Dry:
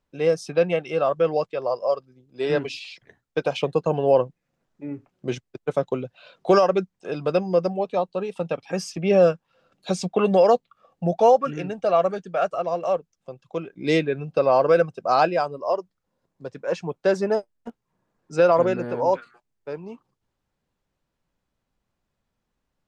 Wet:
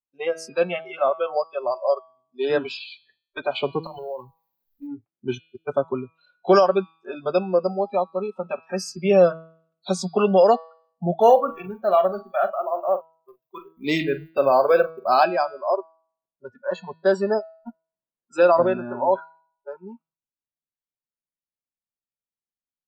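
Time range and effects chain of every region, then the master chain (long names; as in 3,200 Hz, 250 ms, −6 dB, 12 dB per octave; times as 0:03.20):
0:03.83–0:04.87: mu-law and A-law mismatch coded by mu + parametric band 4,200 Hz +10.5 dB 0.85 octaves + downward compressor 12 to 1, threshold −27 dBFS
0:11.21–0:15.24: mu-law and A-law mismatch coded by A + double-tracking delay 43 ms −11.5 dB
whole clip: noise reduction from a noise print of the clip's start 28 dB; low-shelf EQ 95 Hz −8.5 dB; hum removal 162.3 Hz, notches 30; level +2 dB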